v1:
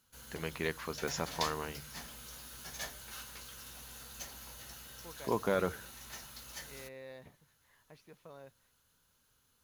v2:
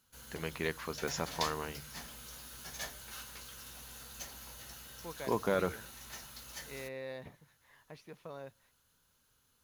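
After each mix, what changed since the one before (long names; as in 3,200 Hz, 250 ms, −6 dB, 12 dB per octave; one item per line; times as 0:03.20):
second voice +6.0 dB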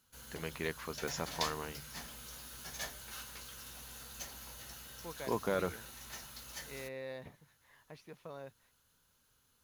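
reverb: off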